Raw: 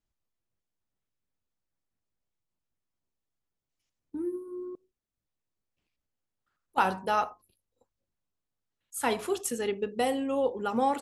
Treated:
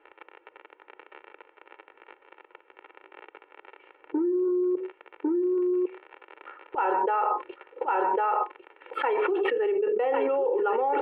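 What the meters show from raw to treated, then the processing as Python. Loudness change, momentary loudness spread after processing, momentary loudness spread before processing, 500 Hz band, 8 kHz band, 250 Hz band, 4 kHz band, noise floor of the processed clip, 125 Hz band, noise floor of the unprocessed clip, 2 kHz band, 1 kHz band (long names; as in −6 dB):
+4.0 dB, 9 LU, 13 LU, +7.5 dB, below −35 dB, +6.0 dB, can't be measured, −64 dBFS, below −15 dB, below −85 dBFS, +3.0 dB, +5.0 dB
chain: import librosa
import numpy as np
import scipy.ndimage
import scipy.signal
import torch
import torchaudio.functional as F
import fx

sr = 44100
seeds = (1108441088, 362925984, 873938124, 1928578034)

y = fx.dmg_crackle(x, sr, seeds[0], per_s=34.0, level_db=-53.0)
y = scipy.signal.sosfilt(scipy.signal.ellip(3, 1.0, 40, [340.0, 2700.0], 'bandpass', fs=sr, output='sos'), y)
y = fx.air_absorb(y, sr, metres=460.0)
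y = y + 0.73 * np.pad(y, (int(2.2 * sr / 1000.0), 0))[:len(y)]
y = y + 10.0 ** (-11.0 / 20.0) * np.pad(y, (int(1101 * sr / 1000.0), 0))[:len(y)]
y = fx.env_flatten(y, sr, amount_pct=100)
y = y * librosa.db_to_amplitude(-5.0)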